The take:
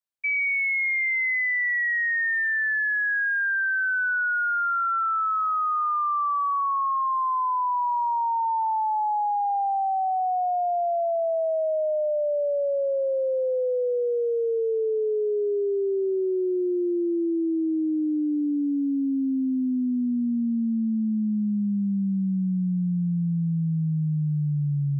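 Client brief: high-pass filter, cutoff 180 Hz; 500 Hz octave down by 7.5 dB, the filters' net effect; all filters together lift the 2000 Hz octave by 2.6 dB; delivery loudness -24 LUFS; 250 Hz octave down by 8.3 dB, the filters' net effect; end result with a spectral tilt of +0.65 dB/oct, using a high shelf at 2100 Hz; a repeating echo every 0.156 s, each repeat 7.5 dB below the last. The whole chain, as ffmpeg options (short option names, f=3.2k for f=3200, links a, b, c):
-af "highpass=180,equalizer=f=250:t=o:g=-7,equalizer=f=500:t=o:g=-7.5,equalizer=f=2k:t=o:g=7.5,highshelf=f=2.1k:g=-7.5,aecho=1:1:156|312|468|624|780:0.422|0.177|0.0744|0.0312|0.0131,volume=0.5dB"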